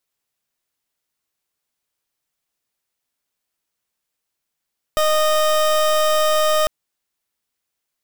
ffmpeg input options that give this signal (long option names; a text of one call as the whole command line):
ffmpeg -f lavfi -i "aevalsrc='0.15*(2*lt(mod(617*t,1),0.28)-1)':duration=1.7:sample_rate=44100" out.wav